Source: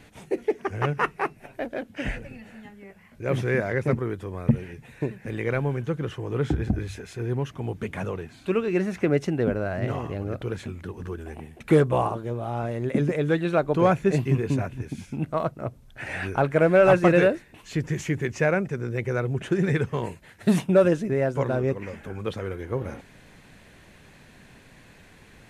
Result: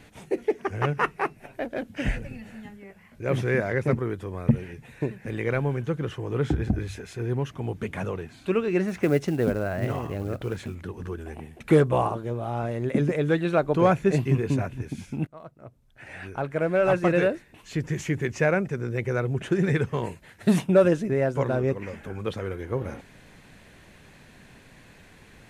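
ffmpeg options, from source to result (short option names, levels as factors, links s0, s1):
-filter_complex "[0:a]asettb=1/sr,asplit=3[s0][s1][s2];[s0]atrim=end=1.764[s3];[s1]atrim=start=1.76:end=2.77,asetpts=PTS-STARTPTS,afade=t=in:d=0.004:c=qsin,afade=t=out:st=1.006:d=0.004:c=qsin,bass=f=250:g=5,treble=f=4000:g=3[s4];[s2]atrim=start=2.766[s5];[s3][s4]acrossfade=d=0.004:c1=hsin:c2=qsin[s6];[s6][s5]acrossfade=d=0.004:c1=qsin:c2=hsin,asettb=1/sr,asplit=3[s7][s8][s9];[s7]atrim=end=8.884[s10];[s8]atrim=start=8.88:end=10.75,asetpts=PTS-STARTPTS,afade=t=in:d=0.004:c=qsin,afade=t=out:st=1.866:d=0.004:c=qsin,acrusher=bits=7:mode=log:mix=0:aa=0.000001[s11];[s9]atrim=start=10.746[s12];[s10][s11]acrossfade=d=0.004:c1=hsin:c2=qsin[s13];[s13][s12]acrossfade=d=0.004:c1=qsin:c2=hsin,asplit=2[s14][s15];[s14]atrim=end=15.27,asetpts=PTS-STARTPTS,afade=t=out:st=15.266:d=0.004:c=hsin:silence=0.0841395[s16];[s15]atrim=start=15.27,asetpts=PTS-STARTPTS,afade=t=in:d=2.99:silence=0.0841395[s17];[s16][s17]concat=n=2:v=0:a=1"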